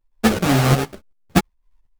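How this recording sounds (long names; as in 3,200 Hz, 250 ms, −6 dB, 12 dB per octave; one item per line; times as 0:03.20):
tremolo saw up 2.7 Hz, depth 75%
aliases and images of a low sample rate 1,000 Hz, jitter 20%
a shimmering, thickened sound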